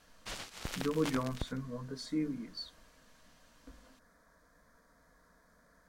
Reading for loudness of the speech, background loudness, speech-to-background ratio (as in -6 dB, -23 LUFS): -38.0 LUFS, -43.5 LUFS, 5.5 dB